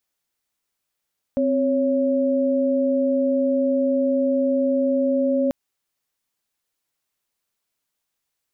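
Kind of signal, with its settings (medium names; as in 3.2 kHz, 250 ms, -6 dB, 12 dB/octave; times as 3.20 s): chord C4/C#5 sine, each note -20 dBFS 4.14 s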